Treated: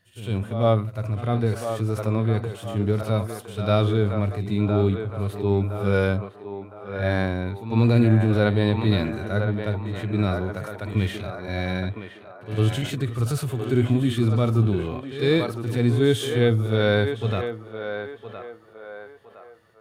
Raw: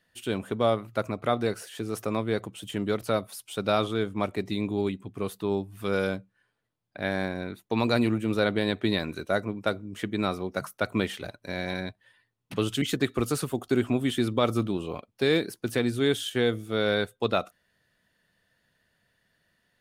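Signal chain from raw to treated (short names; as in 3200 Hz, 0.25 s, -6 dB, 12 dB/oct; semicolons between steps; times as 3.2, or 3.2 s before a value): bell 100 Hz +10.5 dB 0.81 oct; on a send: narrowing echo 1.013 s, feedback 48%, band-pass 910 Hz, level -6.5 dB; on the sum: harmonic-percussive split percussive -15 dB; transient shaper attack -1 dB, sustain +4 dB; pre-echo 0.102 s -13 dB; gain +5 dB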